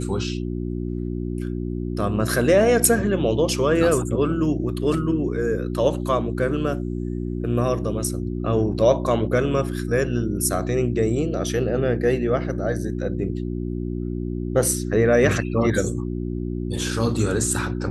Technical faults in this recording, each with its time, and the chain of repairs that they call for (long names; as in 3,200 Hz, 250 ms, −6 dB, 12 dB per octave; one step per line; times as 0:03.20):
mains hum 60 Hz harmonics 6 −27 dBFS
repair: hum removal 60 Hz, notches 6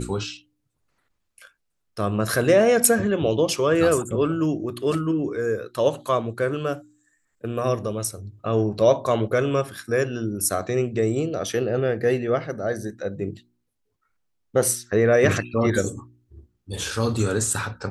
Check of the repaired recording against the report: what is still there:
none of them is left